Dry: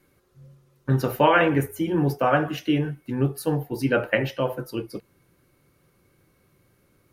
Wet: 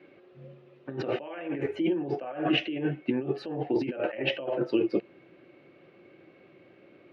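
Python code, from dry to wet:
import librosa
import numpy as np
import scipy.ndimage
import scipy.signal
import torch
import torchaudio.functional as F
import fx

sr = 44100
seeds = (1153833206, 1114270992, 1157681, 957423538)

y = fx.peak_eq(x, sr, hz=540.0, db=7.0, octaves=0.51)
y = fx.over_compress(y, sr, threshold_db=-30.0, ratio=-1.0)
y = fx.cabinet(y, sr, low_hz=230.0, low_slope=12, high_hz=3200.0, hz=(340.0, 490.0, 700.0, 1000.0, 1400.0, 2600.0), db=(7, -5, 3, -6, -5, 5))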